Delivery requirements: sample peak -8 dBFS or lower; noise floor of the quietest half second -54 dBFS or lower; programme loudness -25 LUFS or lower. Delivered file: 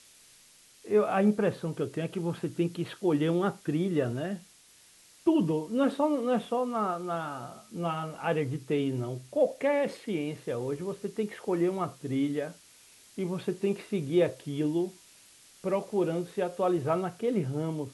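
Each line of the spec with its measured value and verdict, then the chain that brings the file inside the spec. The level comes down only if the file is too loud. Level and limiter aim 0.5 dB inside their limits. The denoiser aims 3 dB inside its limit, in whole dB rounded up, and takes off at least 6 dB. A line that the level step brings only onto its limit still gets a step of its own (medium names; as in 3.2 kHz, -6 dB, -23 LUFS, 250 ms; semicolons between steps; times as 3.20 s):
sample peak -14.0 dBFS: pass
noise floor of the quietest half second -58 dBFS: pass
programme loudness -30.0 LUFS: pass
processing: none needed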